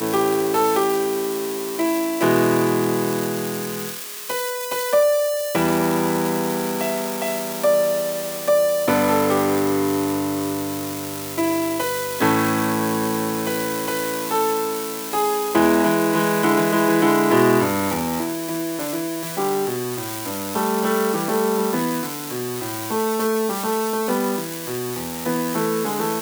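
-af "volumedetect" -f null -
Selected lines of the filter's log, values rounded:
mean_volume: -21.0 dB
max_volume: -3.4 dB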